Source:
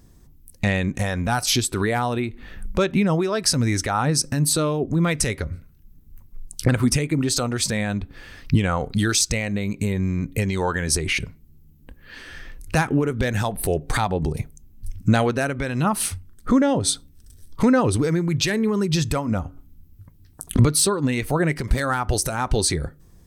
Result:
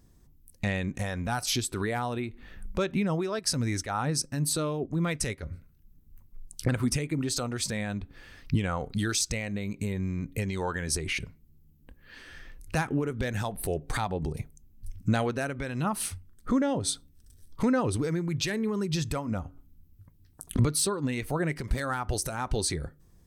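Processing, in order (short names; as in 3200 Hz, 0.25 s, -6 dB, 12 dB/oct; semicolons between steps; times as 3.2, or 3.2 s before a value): 3.39–5.43 gate -24 dBFS, range -7 dB; gain -8 dB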